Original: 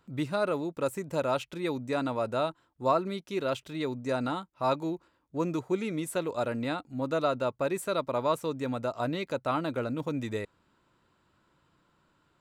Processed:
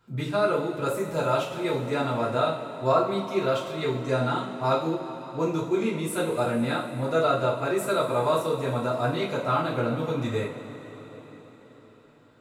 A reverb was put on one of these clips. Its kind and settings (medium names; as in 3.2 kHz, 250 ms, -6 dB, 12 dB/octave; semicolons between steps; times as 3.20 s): two-slope reverb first 0.37 s, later 4.9 s, from -18 dB, DRR -7 dB; trim -2.5 dB